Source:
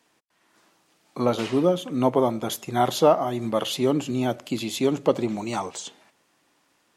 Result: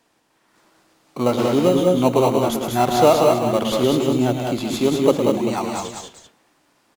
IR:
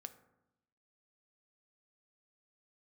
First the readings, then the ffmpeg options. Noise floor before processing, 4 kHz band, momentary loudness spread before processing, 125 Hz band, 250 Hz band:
−67 dBFS, +4.0 dB, 10 LU, +6.0 dB, +6.0 dB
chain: -filter_complex "[0:a]asplit=2[link_01][link_02];[link_02]acrusher=samples=13:mix=1:aa=0.000001,volume=-6.5dB[link_03];[link_01][link_03]amix=inputs=2:normalize=0,aecho=1:1:111|185|207|251|391:0.376|0.562|0.531|0.126|0.266"

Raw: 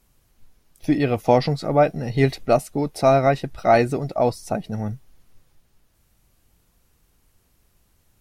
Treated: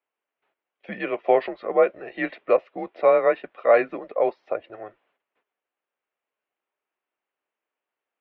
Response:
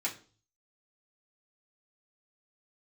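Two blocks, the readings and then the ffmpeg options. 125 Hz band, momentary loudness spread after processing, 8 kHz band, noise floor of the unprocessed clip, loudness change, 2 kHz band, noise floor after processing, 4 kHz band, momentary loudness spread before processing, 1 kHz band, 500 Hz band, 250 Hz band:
below −25 dB, 13 LU, below −35 dB, −64 dBFS, −2.0 dB, −1.0 dB, below −85 dBFS, below −10 dB, 11 LU, −5.0 dB, −1.0 dB, −10.5 dB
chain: -af "agate=range=-14dB:threshold=-47dB:ratio=16:detection=peak,highpass=frequency=510:width_type=q:width=0.5412,highpass=frequency=510:width_type=q:width=1.307,lowpass=frequency=3000:width_type=q:width=0.5176,lowpass=frequency=3000:width_type=q:width=0.7071,lowpass=frequency=3000:width_type=q:width=1.932,afreqshift=-100"

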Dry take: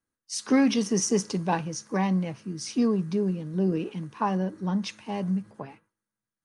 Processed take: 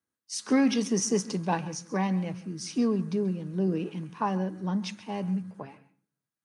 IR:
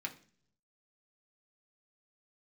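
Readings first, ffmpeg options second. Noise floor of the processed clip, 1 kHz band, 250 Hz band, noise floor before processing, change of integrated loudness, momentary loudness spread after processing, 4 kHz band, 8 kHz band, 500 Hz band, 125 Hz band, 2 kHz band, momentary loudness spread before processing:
below −85 dBFS, −2.0 dB, −2.0 dB, below −85 dBFS, −2.0 dB, 12 LU, −2.0 dB, −2.0 dB, −2.0 dB, −2.0 dB, −2.0 dB, 12 LU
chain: -filter_complex "[0:a]highpass=88,asplit=2[link_01][link_02];[1:a]atrim=start_sample=2205,adelay=134[link_03];[link_02][link_03]afir=irnorm=-1:irlink=0,volume=-15.5dB[link_04];[link_01][link_04]amix=inputs=2:normalize=0,volume=-2dB"

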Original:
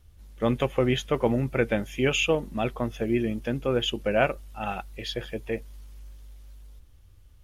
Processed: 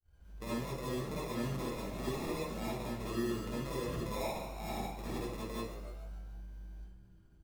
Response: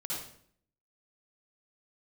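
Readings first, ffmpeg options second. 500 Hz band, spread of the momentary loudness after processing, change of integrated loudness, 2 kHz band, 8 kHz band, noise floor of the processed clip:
−13.5 dB, 13 LU, −12.0 dB, −15.5 dB, −7.5 dB, −61 dBFS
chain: -filter_complex "[0:a]agate=range=-33dB:threshold=-48dB:ratio=3:detection=peak,acrusher=samples=29:mix=1:aa=0.000001,acompressor=threshold=-27dB:ratio=3,asplit=6[link_01][link_02][link_03][link_04][link_05][link_06];[link_02]adelay=145,afreqshift=69,volume=-13dB[link_07];[link_03]adelay=290,afreqshift=138,volume=-18.5dB[link_08];[link_04]adelay=435,afreqshift=207,volume=-24dB[link_09];[link_05]adelay=580,afreqshift=276,volume=-29.5dB[link_10];[link_06]adelay=725,afreqshift=345,volume=-35.1dB[link_11];[link_01][link_07][link_08][link_09][link_10][link_11]amix=inputs=6:normalize=0,alimiter=level_in=0.5dB:limit=-24dB:level=0:latency=1:release=153,volume=-0.5dB[link_12];[1:a]atrim=start_sample=2205,asetrate=48510,aresample=44100[link_13];[link_12][link_13]afir=irnorm=-1:irlink=0,volume=-6.5dB"

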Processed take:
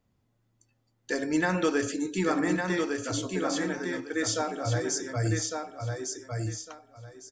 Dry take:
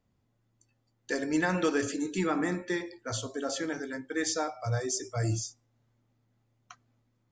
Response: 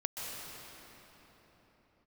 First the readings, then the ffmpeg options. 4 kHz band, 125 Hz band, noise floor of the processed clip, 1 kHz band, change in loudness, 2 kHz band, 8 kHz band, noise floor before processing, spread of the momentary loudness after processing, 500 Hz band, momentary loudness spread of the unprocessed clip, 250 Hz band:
+3.0 dB, +3.0 dB, −73 dBFS, +3.0 dB, +2.0 dB, +3.0 dB, +3.0 dB, −75 dBFS, 9 LU, +3.0 dB, 7 LU, +3.0 dB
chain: -af "aecho=1:1:1155|2310|3465:0.596|0.131|0.0288,volume=1.5dB"

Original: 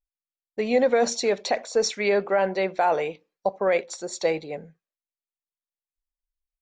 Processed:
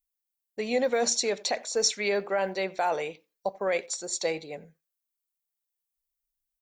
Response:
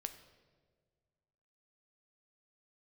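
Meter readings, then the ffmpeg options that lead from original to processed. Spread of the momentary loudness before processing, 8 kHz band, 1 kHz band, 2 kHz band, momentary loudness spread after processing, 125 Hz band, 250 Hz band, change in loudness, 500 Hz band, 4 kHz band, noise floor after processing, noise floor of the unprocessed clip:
11 LU, +4.0 dB, −5.5 dB, −3.0 dB, 11 LU, −6.0 dB, −6.0 dB, −4.0 dB, −5.5 dB, +1.5 dB, below −85 dBFS, below −85 dBFS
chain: -filter_complex "[0:a]aemphasis=mode=production:type=75kf,asplit=2[link_01][link_02];[link_02]adelay=90,highpass=300,lowpass=3400,asoftclip=type=hard:threshold=-14.5dB,volume=-23dB[link_03];[link_01][link_03]amix=inputs=2:normalize=0,volume=-6dB"

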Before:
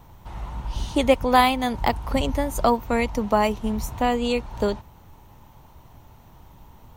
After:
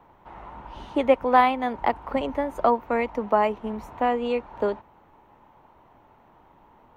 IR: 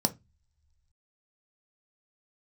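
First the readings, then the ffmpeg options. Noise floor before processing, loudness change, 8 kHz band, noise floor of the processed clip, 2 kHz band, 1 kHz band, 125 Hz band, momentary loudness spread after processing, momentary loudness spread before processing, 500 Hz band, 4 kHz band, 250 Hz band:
−50 dBFS, −1.5 dB, below −20 dB, −57 dBFS, −2.5 dB, 0.0 dB, −13.5 dB, 17 LU, 15 LU, −0.5 dB, −10.0 dB, −4.5 dB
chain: -filter_complex "[0:a]acrossover=split=240 2500:gain=0.141 1 0.0794[link_01][link_02][link_03];[link_01][link_02][link_03]amix=inputs=3:normalize=0"

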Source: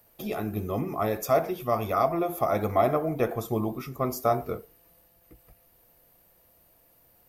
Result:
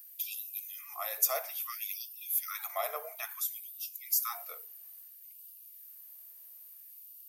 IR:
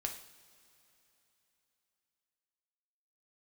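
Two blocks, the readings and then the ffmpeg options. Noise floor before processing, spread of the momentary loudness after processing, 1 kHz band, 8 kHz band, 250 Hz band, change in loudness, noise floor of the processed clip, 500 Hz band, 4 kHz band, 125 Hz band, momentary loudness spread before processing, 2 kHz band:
−62 dBFS, 19 LU, −14.0 dB, +7.5 dB, below −40 dB, −6.5 dB, −53 dBFS, −18.0 dB, +2.5 dB, below −40 dB, 8 LU, −5.0 dB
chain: -af "aderivative,afftfilt=real='re*gte(b*sr/1024,410*pow(2600/410,0.5+0.5*sin(2*PI*0.59*pts/sr)))':imag='im*gte(b*sr/1024,410*pow(2600/410,0.5+0.5*sin(2*PI*0.59*pts/sr)))':win_size=1024:overlap=0.75,volume=7dB"

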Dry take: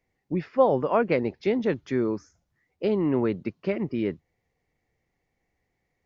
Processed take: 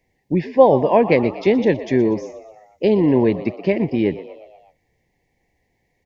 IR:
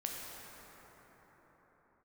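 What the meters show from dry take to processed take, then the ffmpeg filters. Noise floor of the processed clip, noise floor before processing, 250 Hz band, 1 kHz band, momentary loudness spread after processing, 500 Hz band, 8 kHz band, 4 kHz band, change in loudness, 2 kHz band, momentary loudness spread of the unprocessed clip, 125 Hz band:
−69 dBFS, −78 dBFS, +8.5 dB, +8.0 dB, 10 LU, +8.5 dB, can't be measured, +8.5 dB, +8.5 dB, +7.5 dB, 9 LU, +8.5 dB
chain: -filter_complex "[0:a]asuperstop=centerf=1300:order=8:qfactor=2.2,asplit=6[link_01][link_02][link_03][link_04][link_05][link_06];[link_02]adelay=120,afreqshift=76,volume=-15.5dB[link_07];[link_03]adelay=240,afreqshift=152,volume=-20.5dB[link_08];[link_04]adelay=360,afreqshift=228,volume=-25.6dB[link_09];[link_05]adelay=480,afreqshift=304,volume=-30.6dB[link_10];[link_06]adelay=600,afreqshift=380,volume=-35.6dB[link_11];[link_01][link_07][link_08][link_09][link_10][link_11]amix=inputs=6:normalize=0,volume=8.5dB"

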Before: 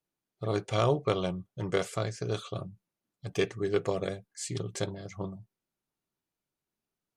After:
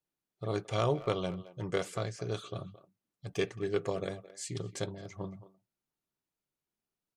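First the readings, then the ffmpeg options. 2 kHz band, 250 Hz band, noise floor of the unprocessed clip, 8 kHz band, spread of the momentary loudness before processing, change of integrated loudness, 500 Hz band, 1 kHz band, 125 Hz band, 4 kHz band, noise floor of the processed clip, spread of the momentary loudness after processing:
−3.5 dB, −3.5 dB, below −85 dBFS, −3.5 dB, 12 LU, −3.5 dB, −3.5 dB, −3.5 dB, −3.5 dB, −3.5 dB, below −85 dBFS, 12 LU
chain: -filter_complex "[0:a]asplit=2[link_01][link_02];[link_02]adelay=220,highpass=300,lowpass=3400,asoftclip=type=hard:threshold=-22.5dB,volume=-15dB[link_03];[link_01][link_03]amix=inputs=2:normalize=0,volume=-3.5dB"

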